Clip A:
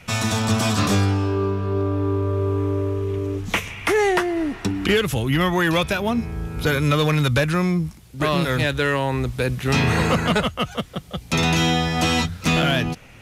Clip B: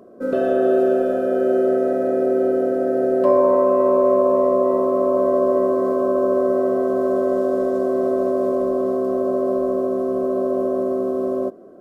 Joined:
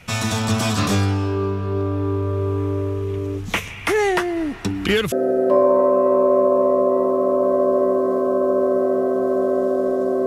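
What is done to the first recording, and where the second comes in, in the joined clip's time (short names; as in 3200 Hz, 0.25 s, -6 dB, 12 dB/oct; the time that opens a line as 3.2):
clip A
5.12 switch to clip B from 2.86 s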